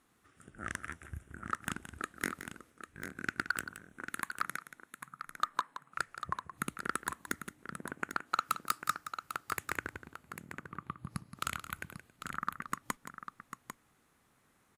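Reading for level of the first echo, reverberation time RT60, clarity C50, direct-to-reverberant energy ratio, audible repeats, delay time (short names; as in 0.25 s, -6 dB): -12.0 dB, none, none, none, 2, 0.172 s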